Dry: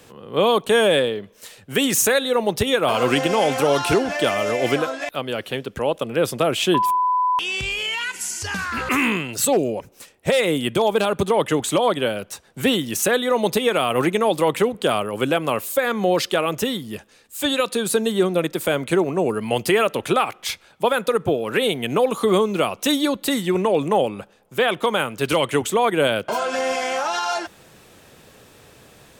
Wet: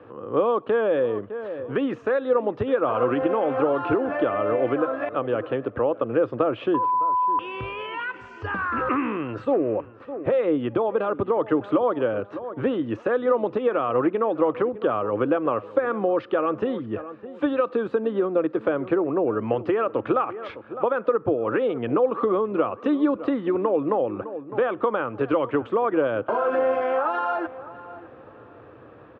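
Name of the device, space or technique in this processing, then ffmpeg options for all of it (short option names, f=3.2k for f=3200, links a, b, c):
bass amplifier: -filter_complex "[0:a]asplit=2[a][b];[b]adelay=607,lowpass=f=2k:p=1,volume=-18.5dB,asplit=2[c][d];[d]adelay=607,lowpass=f=2k:p=1,volume=0.27[e];[a][c][e]amix=inputs=3:normalize=0,acompressor=threshold=-23dB:ratio=4,highpass=81,equalizer=f=110:t=q:w=4:g=5,equalizer=f=170:t=q:w=4:g=-9,equalizer=f=310:t=q:w=4:g=8,equalizer=f=510:t=q:w=4:g=6,equalizer=f=1.2k:t=q:w=4:g=7,equalizer=f=2.1k:t=q:w=4:g=-8,lowpass=f=2.1k:w=0.5412,lowpass=f=2.1k:w=1.3066"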